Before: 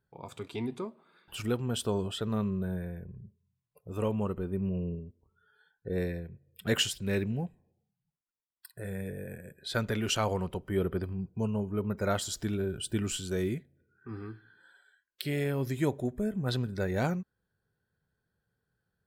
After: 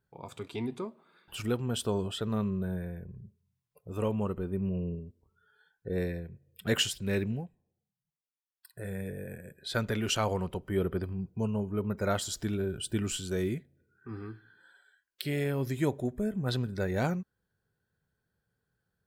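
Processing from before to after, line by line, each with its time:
7.33–8.74 s: dip -8 dB, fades 0.12 s

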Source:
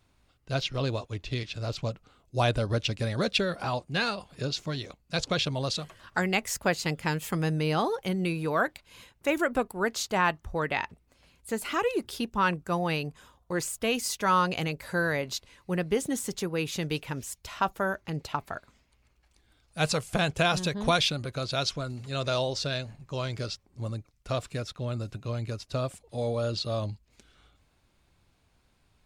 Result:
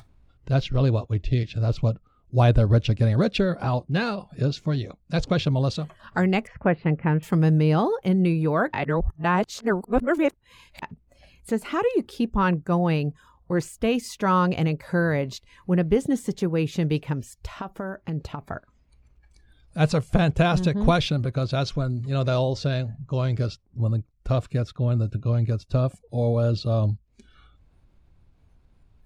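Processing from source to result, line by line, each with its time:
6.47–7.23 s: low-pass 2.5 kHz 24 dB/octave
8.73–10.82 s: reverse
17.13–18.42 s: compression 4:1, threshold -33 dBFS
whole clip: tilt EQ -3 dB/octave; upward compressor, threshold -33 dBFS; spectral noise reduction 14 dB; trim +2 dB

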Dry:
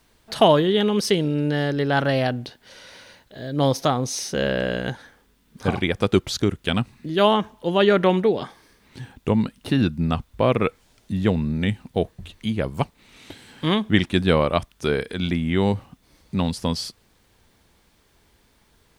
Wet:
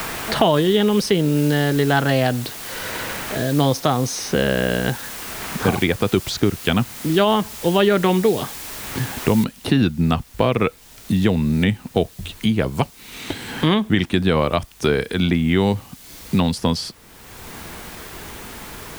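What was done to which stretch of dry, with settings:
9.44 s: noise floor step -41 dB -57 dB
whole clip: band-stop 560 Hz, Q 16; loudness maximiser +7.5 dB; three bands compressed up and down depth 70%; trim -4 dB

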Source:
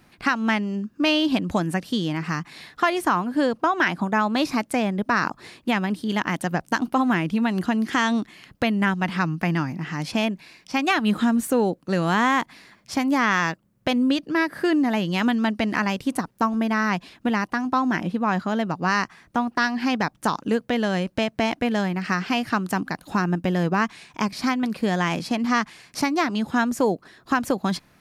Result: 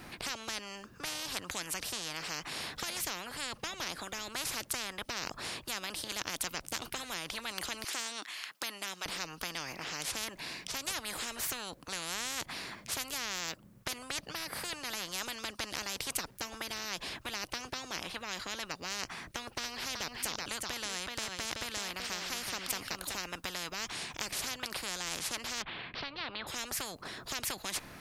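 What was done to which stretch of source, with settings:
7.84–9.06 s: high-pass 1.2 kHz
19.48–23.18 s: delay 378 ms -10.5 dB
25.62–26.47 s: steep low-pass 3.7 kHz 48 dB/octave
whole clip: spectrum-flattening compressor 10:1; trim -7.5 dB

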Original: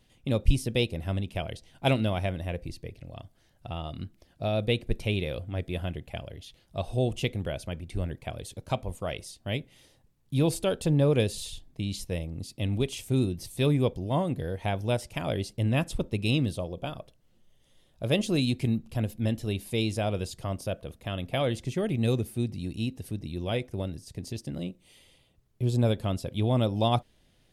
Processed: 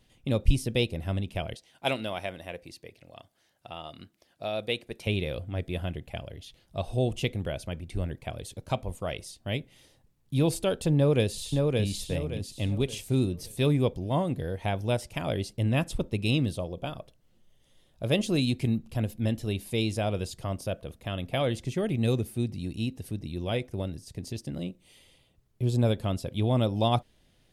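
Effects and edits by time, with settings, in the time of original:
1.54–5.07 s: high-pass 550 Hz 6 dB/octave
10.95–11.80 s: echo throw 570 ms, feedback 35%, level -3 dB

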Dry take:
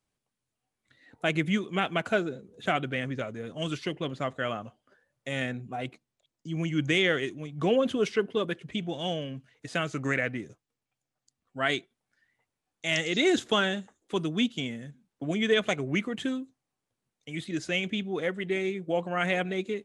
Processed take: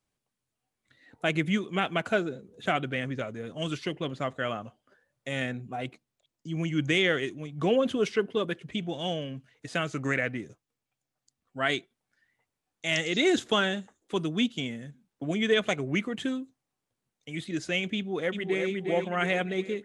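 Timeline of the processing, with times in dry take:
17.96–18.68 s: echo throw 360 ms, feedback 55%, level -5.5 dB

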